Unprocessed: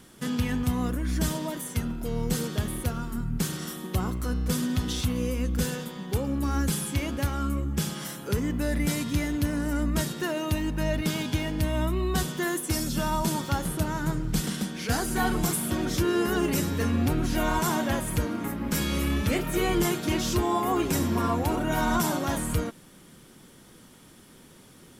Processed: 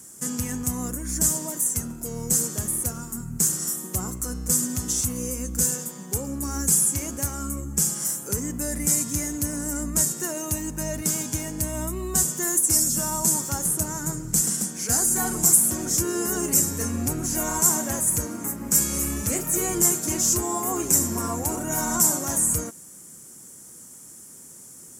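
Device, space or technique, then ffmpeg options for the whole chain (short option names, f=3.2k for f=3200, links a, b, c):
budget condenser microphone: -af "highpass=62,highshelf=f=5.1k:t=q:w=3:g=13,volume=-2.5dB"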